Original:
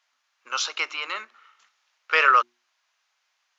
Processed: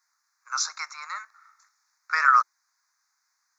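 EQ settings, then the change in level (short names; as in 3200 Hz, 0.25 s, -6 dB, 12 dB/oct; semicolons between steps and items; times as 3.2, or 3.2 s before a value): inverse Chebyshev high-pass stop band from 160 Hz, stop band 80 dB; Butterworth band-stop 3000 Hz, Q 0.99; high shelf 5400 Hz +7.5 dB; 0.0 dB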